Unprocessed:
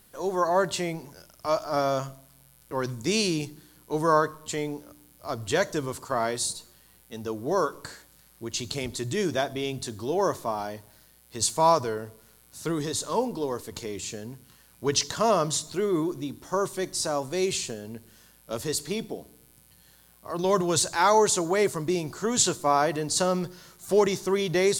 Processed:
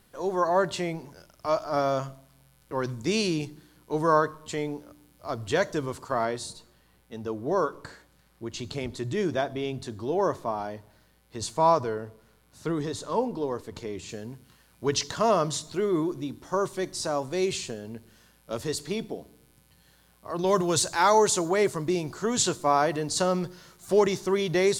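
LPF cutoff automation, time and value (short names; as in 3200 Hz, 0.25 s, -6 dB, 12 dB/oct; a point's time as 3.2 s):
LPF 6 dB/oct
4000 Hz
from 6.25 s 2200 Hz
from 14.09 s 4600 Hz
from 20.47 s 12000 Hz
from 21.49 s 6200 Hz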